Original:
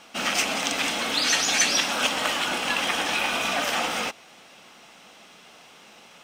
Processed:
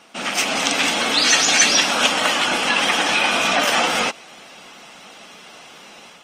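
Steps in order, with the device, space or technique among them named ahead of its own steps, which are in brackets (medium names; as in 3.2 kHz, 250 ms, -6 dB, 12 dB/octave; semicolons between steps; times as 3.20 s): noise-suppressed video call (high-pass 110 Hz 12 dB/octave; spectral gate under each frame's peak -30 dB strong; level rider gain up to 6 dB; trim +2 dB; Opus 24 kbps 48 kHz)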